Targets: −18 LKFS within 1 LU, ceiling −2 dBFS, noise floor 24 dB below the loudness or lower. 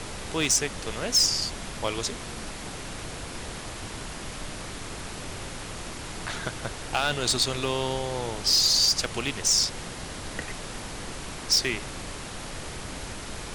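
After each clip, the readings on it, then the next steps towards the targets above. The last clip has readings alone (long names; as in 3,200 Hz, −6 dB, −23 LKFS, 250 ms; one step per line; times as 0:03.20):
share of clipped samples 0.1%; peaks flattened at −15.5 dBFS; background noise floor −38 dBFS; target noise floor −52 dBFS; integrated loudness −27.5 LKFS; sample peak −15.5 dBFS; target loudness −18.0 LKFS
→ clipped peaks rebuilt −15.5 dBFS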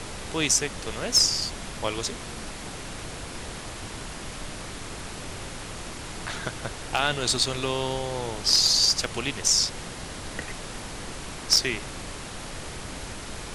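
share of clipped samples 0.0%; background noise floor −38 dBFS; target noise floor −49 dBFS
→ noise reduction from a noise print 11 dB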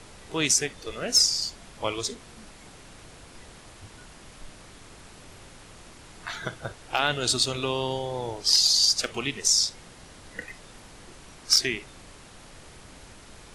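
background noise floor −49 dBFS; integrated loudness −23.5 LKFS; sample peak −6.5 dBFS; target loudness −18.0 LKFS
→ level +5.5 dB
brickwall limiter −2 dBFS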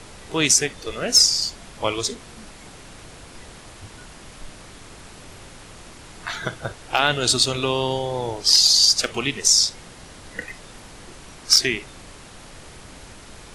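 integrated loudness −18.5 LKFS; sample peak −2.0 dBFS; background noise floor −44 dBFS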